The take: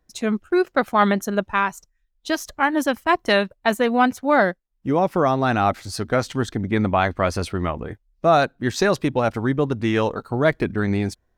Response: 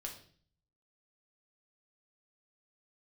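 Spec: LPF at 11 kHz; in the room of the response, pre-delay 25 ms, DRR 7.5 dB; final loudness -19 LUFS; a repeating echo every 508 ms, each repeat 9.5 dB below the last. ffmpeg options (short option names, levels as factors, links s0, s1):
-filter_complex "[0:a]lowpass=11000,aecho=1:1:508|1016|1524|2032:0.335|0.111|0.0365|0.012,asplit=2[s0][s1];[1:a]atrim=start_sample=2205,adelay=25[s2];[s1][s2]afir=irnorm=-1:irlink=0,volume=0.562[s3];[s0][s3]amix=inputs=2:normalize=0,volume=1.12"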